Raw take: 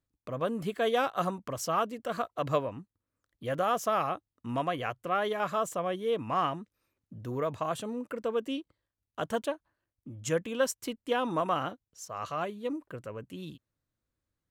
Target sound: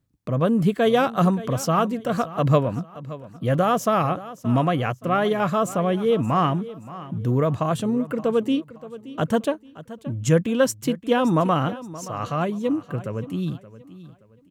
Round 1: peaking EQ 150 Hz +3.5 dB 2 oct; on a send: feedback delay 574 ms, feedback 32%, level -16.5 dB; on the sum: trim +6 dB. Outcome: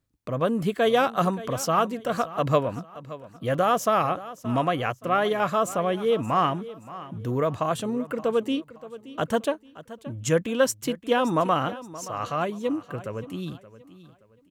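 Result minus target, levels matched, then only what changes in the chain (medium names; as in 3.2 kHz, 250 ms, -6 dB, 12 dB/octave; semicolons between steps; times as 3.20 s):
125 Hz band -5.0 dB
change: peaking EQ 150 Hz +12 dB 2 oct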